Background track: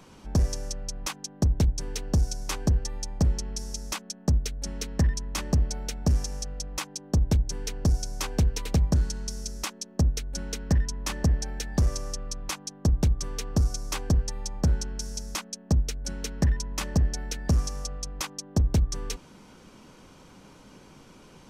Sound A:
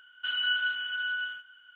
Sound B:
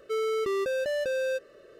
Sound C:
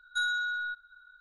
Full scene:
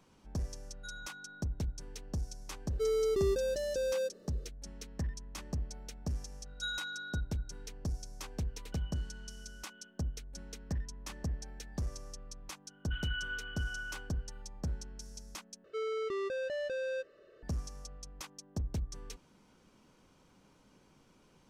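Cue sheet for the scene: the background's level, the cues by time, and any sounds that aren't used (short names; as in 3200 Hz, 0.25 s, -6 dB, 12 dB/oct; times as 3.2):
background track -13.5 dB
0.68 add C -18 dB
2.7 add B -1 dB + band shelf 1400 Hz -11.5 dB 2.5 oct
6.46 add C -14.5 dB + weighting filter D
8.49 add A -17.5 dB + compressor, threshold -38 dBFS
12.67 add A -8 dB + air absorption 340 m
15.64 replace with B -7.5 dB + LPF 5600 Hz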